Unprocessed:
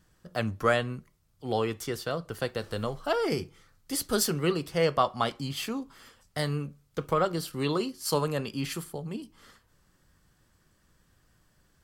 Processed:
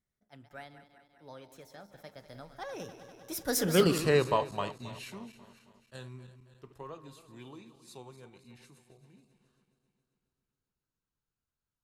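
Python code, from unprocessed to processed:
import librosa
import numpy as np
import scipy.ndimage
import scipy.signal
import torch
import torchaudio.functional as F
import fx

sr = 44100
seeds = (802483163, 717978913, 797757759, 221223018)

y = fx.reverse_delay_fb(x, sr, ms=117, feedback_pct=76, wet_db=-12.5)
y = fx.doppler_pass(y, sr, speed_mps=54, closest_m=9.0, pass_at_s=3.9)
y = fx.attack_slew(y, sr, db_per_s=540.0)
y = F.gain(torch.from_numpy(y), 4.5).numpy()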